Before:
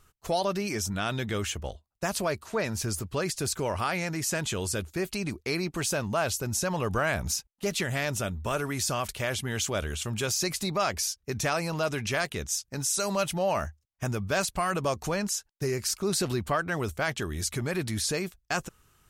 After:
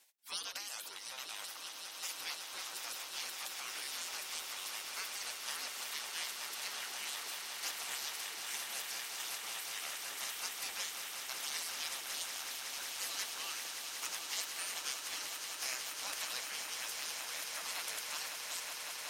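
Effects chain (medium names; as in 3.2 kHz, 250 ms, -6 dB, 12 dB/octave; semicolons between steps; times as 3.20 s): spectral gate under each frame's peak -25 dB weak; high-pass 600 Hz 6 dB/octave; echo with a slow build-up 185 ms, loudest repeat 8, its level -9.5 dB; trim +2 dB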